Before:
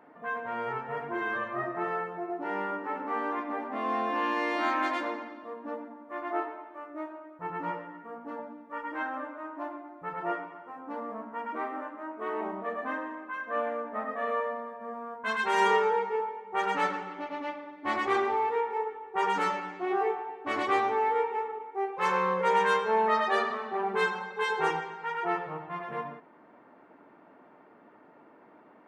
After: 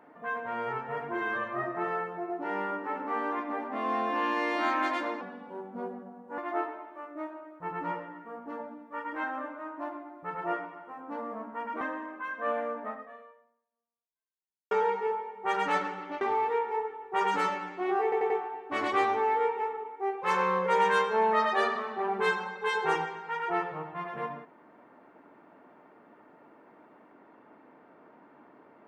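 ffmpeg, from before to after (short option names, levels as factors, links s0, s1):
-filter_complex "[0:a]asplit=9[s0][s1][s2][s3][s4][s5][s6][s7][s8];[s0]atrim=end=5.214[s9];[s1]atrim=start=5.21:end=6.17,asetpts=PTS-STARTPTS,asetrate=36162,aresample=44100,atrim=end_sample=51629,asetpts=PTS-STARTPTS[s10];[s2]atrim=start=6.166:end=11.602[s11];[s3]atrim=start=12.898:end=15.8,asetpts=PTS-STARTPTS,afade=t=out:st=1.022:d=1.88:c=exp[s12];[s4]atrim=start=15.8:end=17.302,asetpts=PTS-STARTPTS,afade=t=in:d=0.004:c=hsin[s13];[s5]atrim=start=18.228:end=20.142[s14];[s6]atrim=start=20.048:end=20.142[s15];[s7]atrim=start=20.048:end=20.142[s16];[s8]atrim=start=20.048[s17];[s9][s10]acrossfade=d=0.004:c1=hsin:c2=hsin[s18];[s18][s11]acrossfade=d=0.004:c1=hsin:c2=hsin[s19];[s12][s13]concat=n=2:v=0:a=1[s20];[s19][s20]acrossfade=d=0.004:c1=hsin:c2=hsin[s21];[s21][s14]acrossfade=d=0.004:c1=hsin:c2=hsin[s22];[s22][s15]acrossfade=d=0.004:c1=hsin:c2=hsin[s23];[s23][s16]acrossfade=d=0.004:c1=hsin:c2=hsin[s24];[s24][s17]acrossfade=d=0.004:c1=hsin:c2=hsin"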